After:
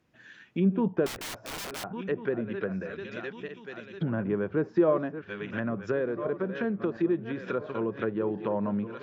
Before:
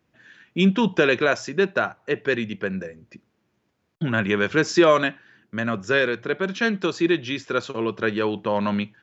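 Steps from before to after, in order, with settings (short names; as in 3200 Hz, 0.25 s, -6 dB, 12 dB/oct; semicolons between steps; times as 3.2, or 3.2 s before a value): regenerating reverse delay 0.697 s, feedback 54%, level -13 dB; in parallel at -1 dB: compressor, threshold -32 dBFS, peak gain reduction 19 dB; on the sum: treble ducked by the level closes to 780 Hz, closed at -18 dBFS; 1.06–1.84 wrapped overs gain 25.5 dB; gain -7 dB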